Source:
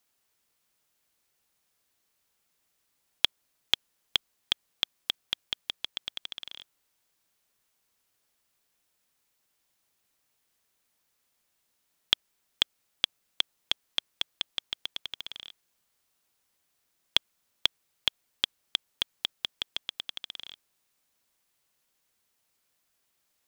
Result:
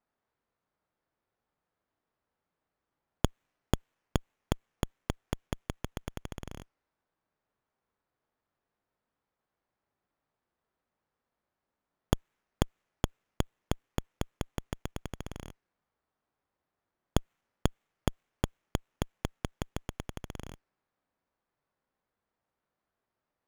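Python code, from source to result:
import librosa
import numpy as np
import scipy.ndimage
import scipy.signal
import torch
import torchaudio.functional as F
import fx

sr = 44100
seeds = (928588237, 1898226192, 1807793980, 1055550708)

y = fx.env_lowpass(x, sr, base_hz=1600.0, full_db=-34.5)
y = fx.hpss(y, sr, part='harmonic', gain_db=5)
y = fx.running_max(y, sr, window=9)
y = y * 10.0 ** (-3.0 / 20.0)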